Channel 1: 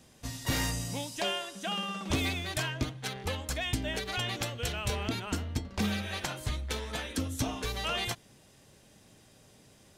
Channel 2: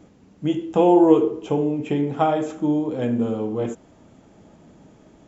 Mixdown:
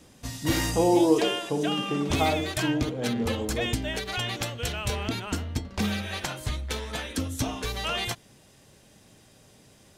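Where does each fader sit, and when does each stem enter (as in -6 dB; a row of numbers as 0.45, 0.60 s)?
+3.0, -6.5 dB; 0.00, 0.00 s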